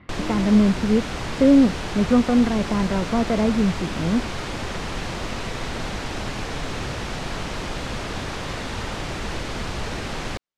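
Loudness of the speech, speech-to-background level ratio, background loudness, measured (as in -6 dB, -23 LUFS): -20.5 LUFS, 9.0 dB, -29.5 LUFS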